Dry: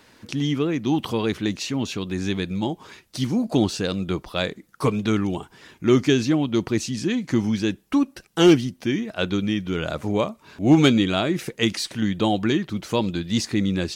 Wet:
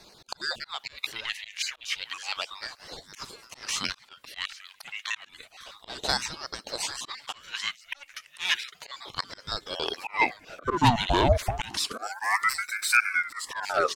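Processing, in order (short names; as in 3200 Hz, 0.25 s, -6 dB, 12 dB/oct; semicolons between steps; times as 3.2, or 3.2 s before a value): random spectral dropouts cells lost 25%; 11.97–12.97 resonant high shelf 3000 Hz +12.5 dB, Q 3; soft clip -15.5 dBFS, distortion -12 dB; echo 0.802 s -17.5 dB; auto swell 0.155 s; high-pass sweep 2200 Hz -> 390 Hz, 9.2–10.72; 11.93–13.5 spectral gain 730–5500 Hz -14 dB; ring modulator with a swept carrier 1100 Hz, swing 75%, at 0.31 Hz; gain +3.5 dB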